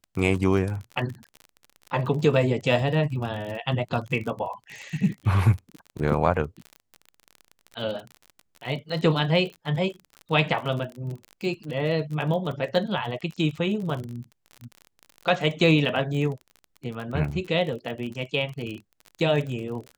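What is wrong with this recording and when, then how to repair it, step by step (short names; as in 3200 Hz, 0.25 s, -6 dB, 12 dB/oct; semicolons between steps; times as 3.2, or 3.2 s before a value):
crackle 37/s -32 dBFS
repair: de-click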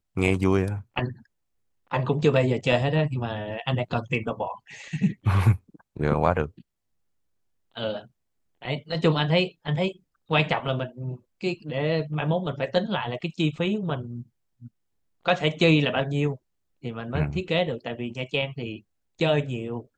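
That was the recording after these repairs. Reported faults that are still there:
none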